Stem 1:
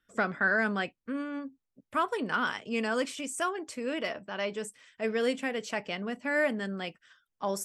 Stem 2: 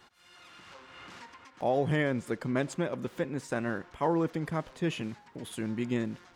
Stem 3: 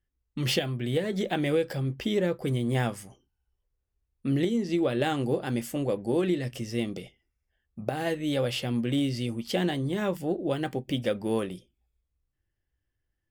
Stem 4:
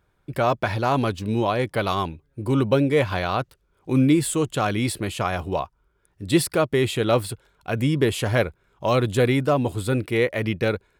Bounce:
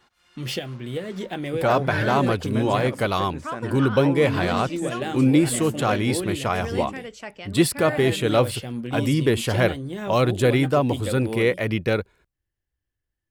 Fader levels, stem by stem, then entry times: -3.5 dB, -2.5 dB, -2.5 dB, +0.5 dB; 1.50 s, 0.00 s, 0.00 s, 1.25 s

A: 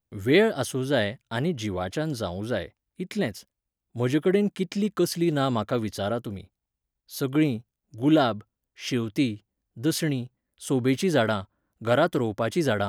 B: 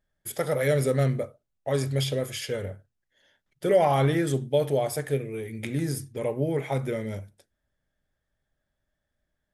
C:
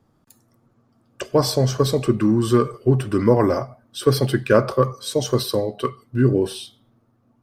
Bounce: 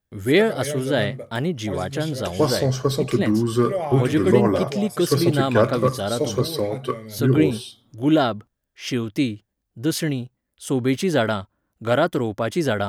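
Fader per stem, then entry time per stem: +2.5 dB, -5.5 dB, -2.5 dB; 0.00 s, 0.00 s, 1.05 s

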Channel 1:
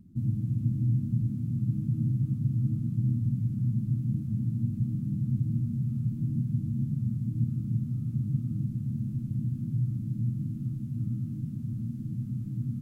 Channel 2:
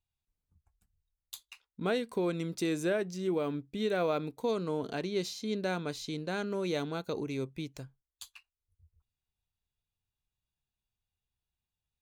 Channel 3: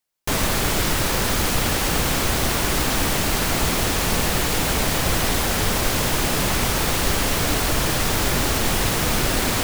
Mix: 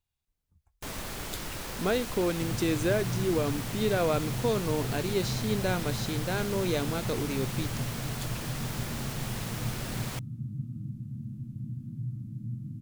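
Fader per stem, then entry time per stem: -7.0 dB, +3.0 dB, -16.5 dB; 2.25 s, 0.00 s, 0.55 s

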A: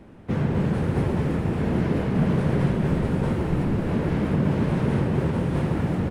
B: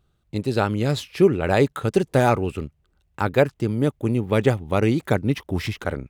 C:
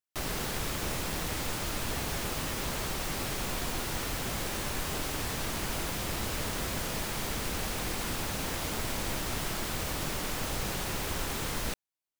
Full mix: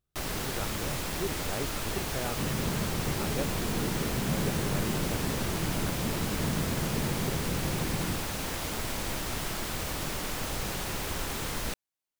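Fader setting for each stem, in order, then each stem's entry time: -10.0 dB, -18.5 dB, 0.0 dB; 2.10 s, 0.00 s, 0.00 s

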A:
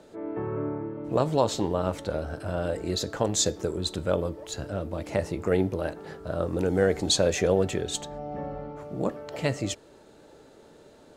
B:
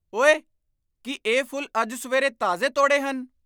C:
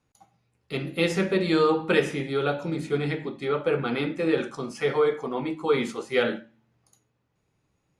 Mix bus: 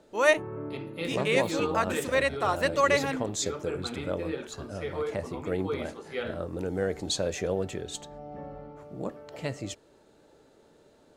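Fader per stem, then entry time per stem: -6.5 dB, -4.0 dB, -10.5 dB; 0.00 s, 0.00 s, 0.00 s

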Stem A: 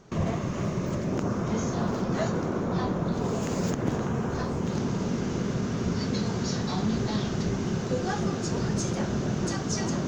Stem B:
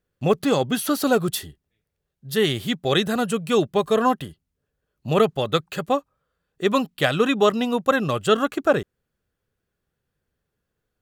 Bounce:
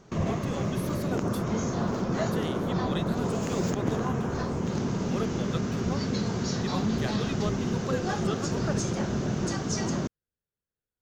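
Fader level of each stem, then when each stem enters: -0.5 dB, -16.5 dB; 0.00 s, 0.00 s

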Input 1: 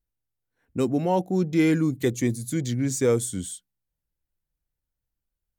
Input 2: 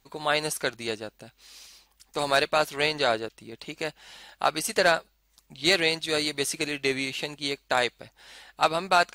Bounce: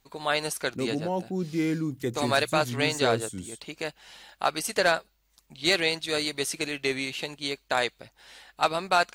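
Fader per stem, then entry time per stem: -6.5 dB, -1.5 dB; 0.00 s, 0.00 s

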